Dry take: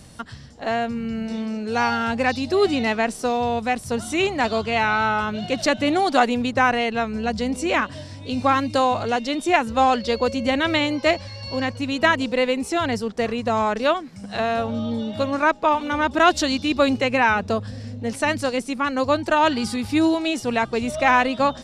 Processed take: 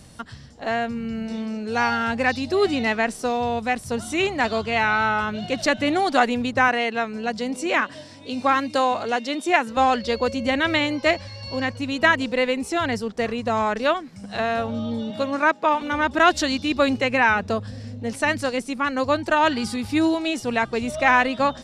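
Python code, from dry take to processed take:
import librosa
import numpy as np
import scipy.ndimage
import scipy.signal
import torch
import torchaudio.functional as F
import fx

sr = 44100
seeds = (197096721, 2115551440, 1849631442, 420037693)

y = fx.highpass(x, sr, hz=210.0, slope=12, at=(6.68, 9.77))
y = fx.highpass(y, sr, hz=130.0, slope=24, at=(15.1, 15.82))
y = fx.dynamic_eq(y, sr, hz=1800.0, q=2.1, threshold_db=-33.0, ratio=4.0, max_db=4)
y = y * 10.0 ** (-1.5 / 20.0)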